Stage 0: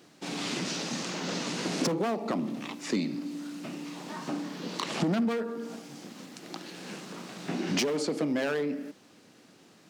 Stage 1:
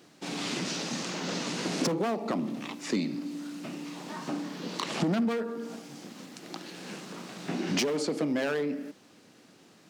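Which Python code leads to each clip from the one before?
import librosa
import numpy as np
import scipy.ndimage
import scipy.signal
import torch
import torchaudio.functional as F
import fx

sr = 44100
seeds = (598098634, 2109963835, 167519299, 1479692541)

y = x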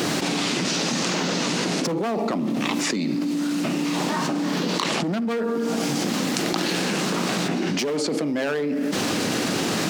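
y = fx.env_flatten(x, sr, amount_pct=100)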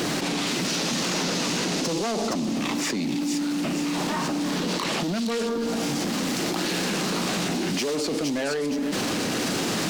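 y = 10.0 ** (-20.5 / 20.0) * np.tanh(x / 10.0 ** (-20.5 / 20.0))
y = fx.echo_wet_highpass(y, sr, ms=468, feedback_pct=49, hz=3300.0, wet_db=-3.0)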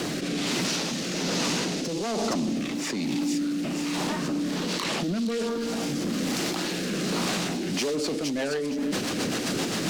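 y = fx.rotary_switch(x, sr, hz=1.2, then_hz=7.5, switch_at_s=7.5)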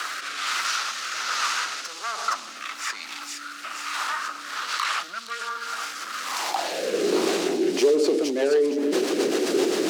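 y = fx.filter_sweep_highpass(x, sr, from_hz=1300.0, to_hz=380.0, start_s=6.19, end_s=7.09, q=5.2)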